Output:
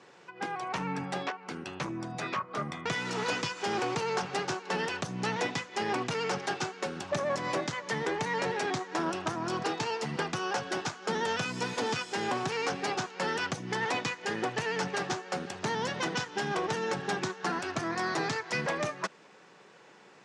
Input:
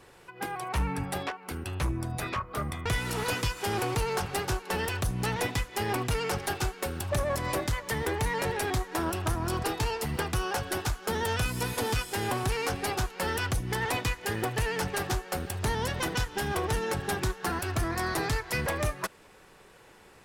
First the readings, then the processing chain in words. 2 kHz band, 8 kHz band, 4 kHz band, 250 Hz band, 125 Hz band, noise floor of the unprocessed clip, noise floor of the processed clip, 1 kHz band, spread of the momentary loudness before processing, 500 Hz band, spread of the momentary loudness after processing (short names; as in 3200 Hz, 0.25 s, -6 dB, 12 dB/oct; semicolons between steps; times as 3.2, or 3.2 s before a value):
-0.5 dB, -5.0 dB, -1.0 dB, -1.0 dB, -8.5 dB, -55 dBFS, -56 dBFS, 0.0 dB, 4 LU, -0.5 dB, 4 LU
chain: elliptic band-pass 160–6600 Hz, stop band 50 dB